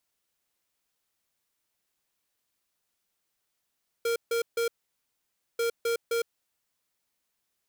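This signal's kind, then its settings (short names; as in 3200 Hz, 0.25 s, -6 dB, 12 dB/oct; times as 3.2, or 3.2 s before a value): beep pattern square 465 Hz, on 0.11 s, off 0.15 s, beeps 3, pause 0.91 s, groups 2, -27 dBFS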